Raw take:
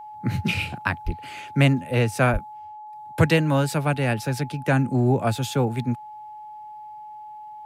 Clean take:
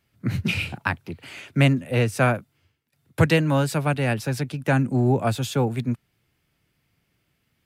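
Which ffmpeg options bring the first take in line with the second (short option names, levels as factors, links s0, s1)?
-filter_complex "[0:a]bandreject=f=850:w=30,asplit=3[s0][s1][s2];[s0]afade=t=out:st=1.05:d=0.02[s3];[s1]highpass=f=140:w=0.5412,highpass=f=140:w=1.3066,afade=t=in:st=1.05:d=0.02,afade=t=out:st=1.17:d=0.02[s4];[s2]afade=t=in:st=1.17:d=0.02[s5];[s3][s4][s5]amix=inputs=3:normalize=0,asplit=3[s6][s7][s8];[s6]afade=t=out:st=2.32:d=0.02[s9];[s7]highpass=f=140:w=0.5412,highpass=f=140:w=1.3066,afade=t=in:st=2.32:d=0.02,afade=t=out:st=2.44:d=0.02[s10];[s8]afade=t=in:st=2.44:d=0.02[s11];[s9][s10][s11]amix=inputs=3:normalize=0"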